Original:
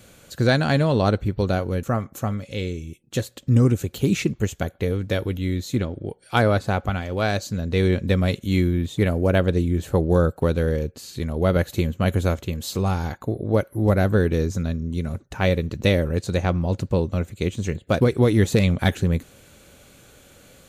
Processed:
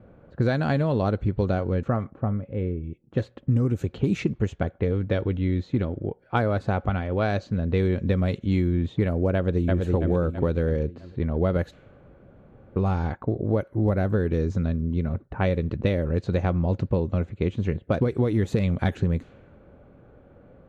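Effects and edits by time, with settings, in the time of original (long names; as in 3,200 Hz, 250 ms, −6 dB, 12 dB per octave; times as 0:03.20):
0:02.10–0:02.84: head-to-tape spacing loss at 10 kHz 38 dB
0:09.35–0:09.80: delay throw 330 ms, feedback 45%, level −4 dB
0:11.73–0:12.76: fill with room tone
whole clip: low-pass filter 1,600 Hz 6 dB per octave; low-pass that shuts in the quiet parts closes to 1,000 Hz, open at −15.5 dBFS; downward compressor, threshold −20 dBFS; level +1.5 dB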